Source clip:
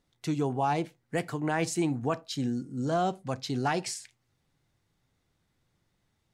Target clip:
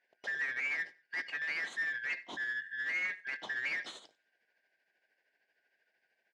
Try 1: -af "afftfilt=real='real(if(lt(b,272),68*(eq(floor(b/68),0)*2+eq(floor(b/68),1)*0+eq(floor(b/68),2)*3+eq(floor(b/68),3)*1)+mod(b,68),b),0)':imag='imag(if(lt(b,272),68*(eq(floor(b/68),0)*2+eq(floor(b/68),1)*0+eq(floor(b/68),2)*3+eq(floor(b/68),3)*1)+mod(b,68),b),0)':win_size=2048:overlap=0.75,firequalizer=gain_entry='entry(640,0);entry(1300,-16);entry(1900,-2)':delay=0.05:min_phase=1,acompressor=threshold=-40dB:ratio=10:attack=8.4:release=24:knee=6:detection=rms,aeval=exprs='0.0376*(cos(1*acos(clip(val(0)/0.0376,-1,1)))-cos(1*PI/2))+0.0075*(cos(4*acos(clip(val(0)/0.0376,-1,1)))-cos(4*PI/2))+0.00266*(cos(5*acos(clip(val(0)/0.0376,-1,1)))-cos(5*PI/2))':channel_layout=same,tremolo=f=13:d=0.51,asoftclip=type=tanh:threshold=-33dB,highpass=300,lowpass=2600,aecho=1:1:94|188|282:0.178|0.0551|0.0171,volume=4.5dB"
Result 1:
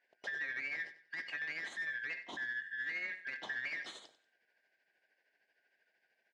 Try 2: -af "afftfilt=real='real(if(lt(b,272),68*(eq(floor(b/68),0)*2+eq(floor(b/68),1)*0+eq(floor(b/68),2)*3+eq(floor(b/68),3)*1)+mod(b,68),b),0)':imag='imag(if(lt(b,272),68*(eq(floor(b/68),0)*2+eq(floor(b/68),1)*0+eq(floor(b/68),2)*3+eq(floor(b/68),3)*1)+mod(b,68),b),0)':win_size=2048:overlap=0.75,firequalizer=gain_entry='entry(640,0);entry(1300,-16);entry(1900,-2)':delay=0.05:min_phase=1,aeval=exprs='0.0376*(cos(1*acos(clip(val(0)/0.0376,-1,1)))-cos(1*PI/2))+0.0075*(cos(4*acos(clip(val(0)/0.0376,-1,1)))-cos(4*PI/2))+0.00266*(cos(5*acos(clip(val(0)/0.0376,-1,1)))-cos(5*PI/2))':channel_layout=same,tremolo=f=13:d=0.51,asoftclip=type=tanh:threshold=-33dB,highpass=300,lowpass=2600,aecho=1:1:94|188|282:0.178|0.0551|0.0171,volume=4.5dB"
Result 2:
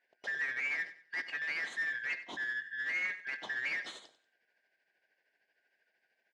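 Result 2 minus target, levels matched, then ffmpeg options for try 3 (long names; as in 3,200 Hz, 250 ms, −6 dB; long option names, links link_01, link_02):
echo-to-direct +9 dB
-af "afftfilt=real='real(if(lt(b,272),68*(eq(floor(b/68),0)*2+eq(floor(b/68),1)*0+eq(floor(b/68),2)*3+eq(floor(b/68),3)*1)+mod(b,68),b),0)':imag='imag(if(lt(b,272),68*(eq(floor(b/68),0)*2+eq(floor(b/68),1)*0+eq(floor(b/68),2)*3+eq(floor(b/68),3)*1)+mod(b,68),b),0)':win_size=2048:overlap=0.75,firequalizer=gain_entry='entry(640,0);entry(1300,-16);entry(1900,-2)':delay=0.05:min_phase=1,aeval=exprs='0.0376*(cos(1*acos(clip(val(0)/0.0376,-1,1)))-cos(1*PI/2))+0.0075*(cos(4*acos(clip(val(0)/0.0376,-1,1)))-cos(4*PI/2))+0.00266*(cos(5*acos(clip(val(0)/0.0376,-1,1)))-cos(5*PI/2))':channel_layout=same,tremolo=f=13:d=0.51,asoftclip=type=tanh:threshold=-33dB,highpass=300,lowpass=2600,aecho=1:1:94|188:0.0631|0.0196,volume=4.5dB"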